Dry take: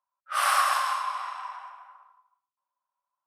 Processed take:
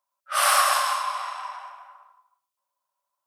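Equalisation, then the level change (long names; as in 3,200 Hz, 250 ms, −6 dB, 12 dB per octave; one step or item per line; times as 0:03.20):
parametric band 590 Hz +9 dB 0.61 octaves
high-shelf EQ 2,700 Hz +9.5 dB
0.0 dB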